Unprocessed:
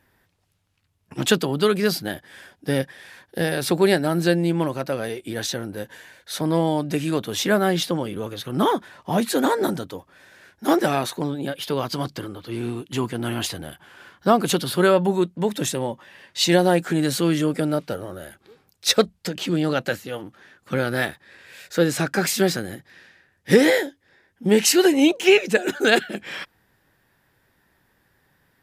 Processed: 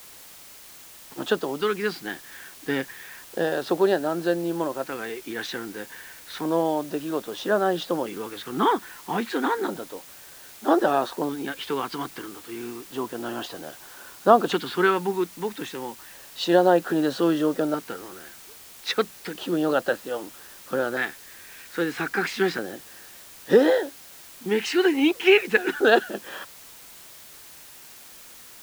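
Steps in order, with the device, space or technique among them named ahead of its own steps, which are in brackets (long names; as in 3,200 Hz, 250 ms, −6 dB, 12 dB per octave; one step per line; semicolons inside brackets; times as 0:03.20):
shortwave radio (band-pass filter 340–2,600 Hz; amplitude tremolo 0.35 Hz, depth 39%; auto-filter notch square 0.31 Hz 590–2,200 Hz; white noise bed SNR 20 dB)
level +3 dB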